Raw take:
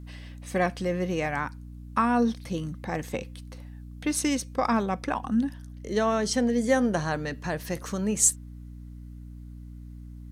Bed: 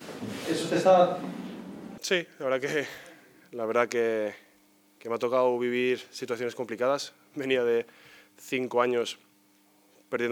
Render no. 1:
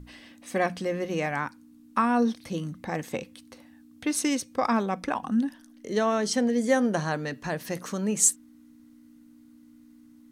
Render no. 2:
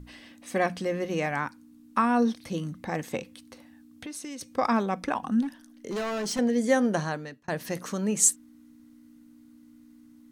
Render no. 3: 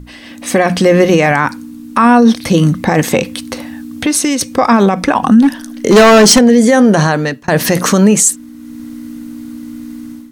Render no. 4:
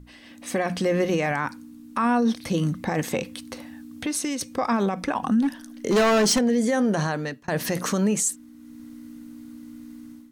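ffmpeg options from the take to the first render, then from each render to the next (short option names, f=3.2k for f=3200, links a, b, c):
-af "bandreject=f=60:t=h:w=6,bandreject=f=120:t=h:w=6,bandreject=f=180:t=h:w=6"
-filter_complex "[0:a]asettb=1/sr,asplit=3[a][b][c];[a]atrim=end=3.214[d];[b]atrim=start=3.21:end=4.41,asetpts=PTS-STARTPTS,afade=t=in:d=0.004:c=qsin,afade=t=out:st=1.196:d=0.004:c=qsin,acompressor=threshold=-36dB:ratio=6:attack=3.2:release=140:knee=1:detection=peak[e];[c]atrim=start=4.406[f];[d][e]acrossfade=d=0.004:c1=hsin:c2=qsin[g];[g][f]acrossfade=d=0.004:c1=qsin:c2=hsin,asettb=1/sr,asplit=3[h][i][j];[h]atrim=end=5.424[k];[i]atrim=start=5.42:end=6.39,asetpts=PTS-STARTPTS,afade=t=in:d=0.004:c=qsin,afade=t=out:st=0.966:d=0.004:c=qsin,asoftclip=type=hard:threshold=-28dB[l];[j]atrim=start=6.386[m];[k][l]acrossfade=d=0.004:c1=hsin:c2=qsin[n];[n][m]acrossfade=d=0.004:c1=qsin:c2=hsin,asplit=2[o][p];[o]atrim=end=7.48,asetpts=PTS-STARTPTS,afade=t=out:st=6.98:d=0.5[q];[p]atrim=start=7.48,asetpts=PTS-STARTPTS,afade=t=in:d=0.004:c=hsin[r];[q][r]concat=n=2:v=0:a=1"
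-af "dynaudnorm=f=220:g=3:m=13.5dB,alimiter=level_in=12.5dB:limit=-1dB:release=50:level=0:latency=1"
-af "volume=-14dB"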